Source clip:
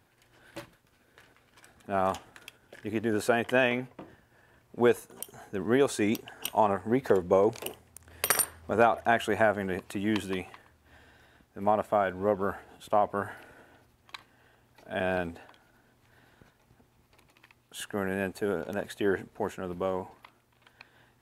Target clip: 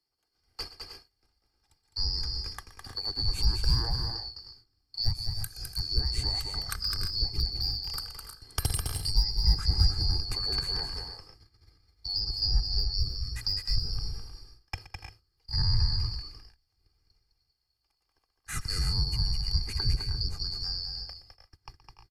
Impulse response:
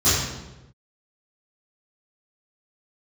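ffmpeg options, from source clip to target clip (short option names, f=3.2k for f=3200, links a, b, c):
-filter_complex "[0:a]afftfilt=real='real(if(lt(b,272),68*(eq(floor(b/68),0)*1+eq(floor(b/68),1)*2+eq(floor(b/68),2)*3+eq(floor(b/68),3)*0)+mod(b,68),b),0)':imag='imag(if(lt(b,272),68*(eq(floor(b/68),0)*1+eq(floor(b/68),1)*2+eq(floor(b/68),2)*3+eq(floor(b/68),3)*0)+mod(b,68),b),0)':win_size=2048:overlap=0.75,volume=14dB,asoftclip=hard,volume=-14dB,asubboost=boost=5.5:cutoff=130,agate=range=-22dB:threshold=-49dB:ratio=16:detection=peak,acrossover=split=170|450[a][b][c];[a]acompressor=threshold=-29dB:ratio=4[d];[b]acompressor=threshold=-52dB:ratio=4[e];[c]acompressor=threshold=-38dB:ratio=4[f];[d][e][f]amix=inputs=3:normalize=0,aecho=1:1:2.4:0.54,aecho=1:1:117|200|278|298|315|332:0.158|0.531|0.141|0.316|0.126|0.2,asetrate=42336,aresample=44100,volume=4dB"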